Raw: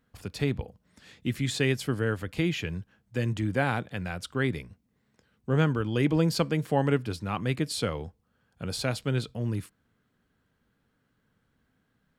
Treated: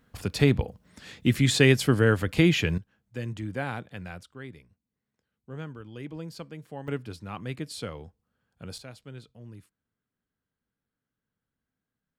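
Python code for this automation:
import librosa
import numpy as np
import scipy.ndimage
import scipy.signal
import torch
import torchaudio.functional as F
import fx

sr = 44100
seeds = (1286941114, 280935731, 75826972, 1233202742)

y = fx.gain(x, sr, db=fx.steps((0.0, 7.0), (2.78, -5.5), (4.23, -14.5), (6.88, -6.5), (8.78, -15.5)))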